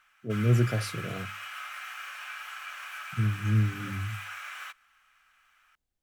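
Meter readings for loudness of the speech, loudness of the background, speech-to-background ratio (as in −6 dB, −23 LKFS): −29.0 LKFS, −39.0 LKFS, 10.0 dB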